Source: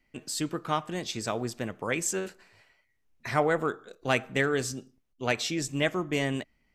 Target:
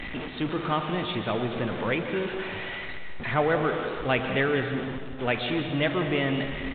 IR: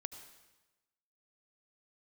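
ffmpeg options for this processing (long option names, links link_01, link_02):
-filter_complex "[0:a]aeval=exprs='val(0)+0.5*0.0398*sgn(val(0))':channel_layout=same,aresample=8000,aresample=44100[link_01];[1:a]atrim=start_sample=2205,asetrate=26019,aresample=44100[link_02];[link_01][link_02]afir=irnorm=-1:irlink=0"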